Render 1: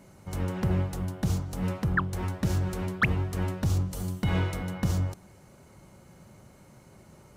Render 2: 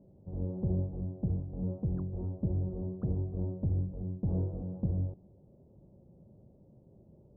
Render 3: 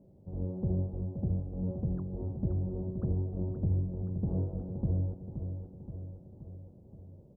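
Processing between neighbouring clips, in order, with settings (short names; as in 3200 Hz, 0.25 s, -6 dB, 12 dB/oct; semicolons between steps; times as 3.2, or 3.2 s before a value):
inverse Chebyshev low-pass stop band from 2000 Hz, stop band 60 dB; gain -4.5 dB
feedback echo 0.524 s, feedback 59%, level -8.5 dB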